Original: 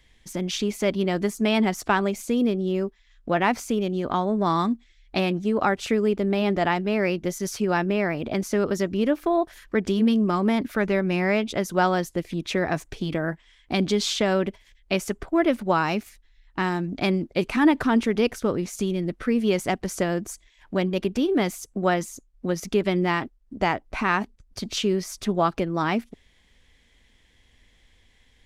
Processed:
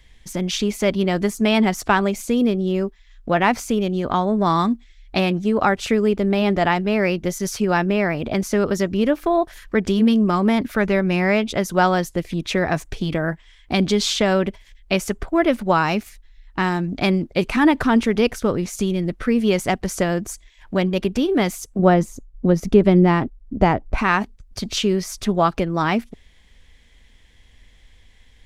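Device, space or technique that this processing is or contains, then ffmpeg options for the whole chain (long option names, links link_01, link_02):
low shelf boost with a cut just above: -filter_complex "[0:a]lowshelf=frequency=71:gain=7,equalizer=frequency=320:width_type=o:width=0.77:gain=-2.5,asettb=1/sr,asplit=3[link_01][link_02][link_03];[link_01]atrim=end=21.794[link_04];[link_02]atrim=start=21.79:end=23.98,asetpts=PTS-STARTPTS,afade=type=in:duration=0.004:curve=qsin,afade=type=out:start_time=2.186:duration=0.004:curve=qsin,tiltshelf=frequency=970:gain=7[link_05];[link_03]atrim=start=23.976[link_06];[link_04][link_05]acrossfade=duration=0.004:curve1=hsin:curve2=qsin[link_07];[link_07][link_06]acrossfade=duration=0.004:curve1=qsin:curve2=hsin,volume=4.5dB"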